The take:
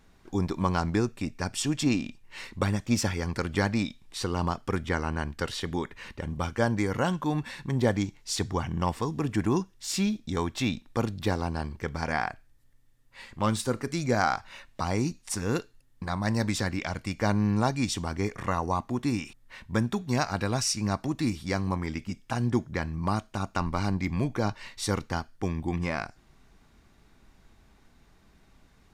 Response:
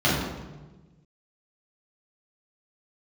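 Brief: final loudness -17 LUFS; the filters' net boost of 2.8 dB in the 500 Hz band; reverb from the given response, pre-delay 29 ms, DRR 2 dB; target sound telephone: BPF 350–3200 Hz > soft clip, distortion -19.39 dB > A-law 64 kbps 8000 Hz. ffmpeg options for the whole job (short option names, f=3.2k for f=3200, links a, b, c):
-filter_complex "[0:a]equalizer=f=500:t=o:g=5,asplit=2[a][b];[1:a]atrim=start_sample=2205,adelay=29[c];[b][c]afir=irnorm=-1:irlink=0,volume=-20dB[d];[a][d]amix=inputs=2:normalize=0,highpass=350,lowpass=3.2k,asoftclip=threshold=-15dB,volume=12dB" -ar 8000 -c:a pcm_alaw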